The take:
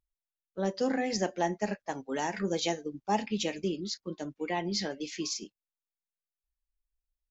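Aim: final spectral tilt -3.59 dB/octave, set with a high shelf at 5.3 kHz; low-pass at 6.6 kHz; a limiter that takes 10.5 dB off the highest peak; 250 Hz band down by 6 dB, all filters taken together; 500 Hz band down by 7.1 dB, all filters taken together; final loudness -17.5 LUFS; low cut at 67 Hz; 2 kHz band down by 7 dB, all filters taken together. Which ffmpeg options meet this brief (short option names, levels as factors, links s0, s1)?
-af "highpass=67,lowpass=6600,equalizer=f=250:t=o:g=-6,equalizer=f=500:t=o:g=-7,equalizer=f=2000:t=o:g=-8.5,highshelf=f=5300:g=4.5,volume=13.3,alimiter=limit=0.501:level=0:latency=1"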